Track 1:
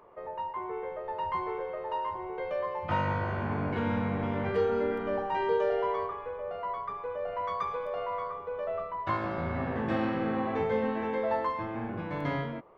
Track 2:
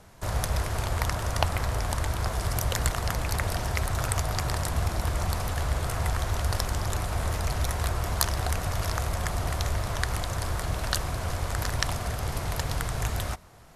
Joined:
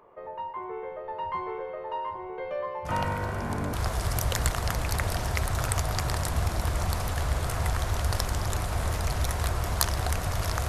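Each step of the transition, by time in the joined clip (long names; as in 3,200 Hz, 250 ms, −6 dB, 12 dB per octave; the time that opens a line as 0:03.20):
track 1
0:02.85: mix in track 2 from 0:01.25 0.88 s −10.5 dB
0:03.73: continue with track 2 from 0:02.13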